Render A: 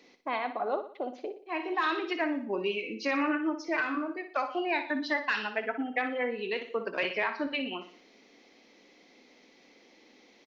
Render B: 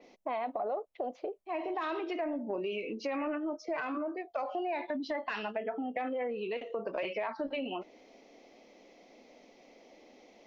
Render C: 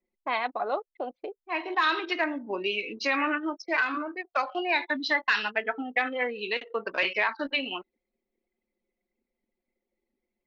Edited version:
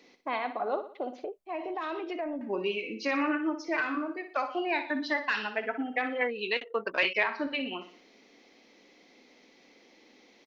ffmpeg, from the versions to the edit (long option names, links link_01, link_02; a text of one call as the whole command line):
ffmpeg -i take0.wav -i take1.wav -i take2.wav -filter_complex "[0:a]asplit=3[link_01][link_02][link_03];[link_01]atrim=end=1.242[link_04];[1:a]atrim=start=1.238:end=2.412[link_05];[link_02]atrim=start=2.408:end=6.212[link_06];[2:a]atrim=start=6.208:end=7.232[link_07];[link_03]atrim=start=7.228[link_08];[link_04][link_05]acrossfade=duration=0.004:curve1=hsin:curve2=hsin[link_09];[link_09][link_06]acrossfade=duration=0.004:curve1=hsin:curve2=hsin[link_10];[link_10][link_07]acrossfade=duration=0.004:curve1=hsin:curve2=hsin[link_11];[link_11][link_08]acrossfade=duration=0.004:curve1=hsin:curve2=hsin" out.wav